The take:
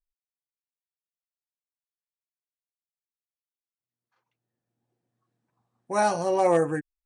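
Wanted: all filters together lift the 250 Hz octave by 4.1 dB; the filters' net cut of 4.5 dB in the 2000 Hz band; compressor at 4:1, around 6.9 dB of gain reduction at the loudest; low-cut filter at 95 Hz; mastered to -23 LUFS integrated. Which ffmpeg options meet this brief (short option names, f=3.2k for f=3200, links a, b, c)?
-af "highpass=95,equalizer=f=250:t=o:g=7,equalizer=f=2k:t=o:g=-7,acompressor=threshold=-23dB:ratio=4,volume=5dB"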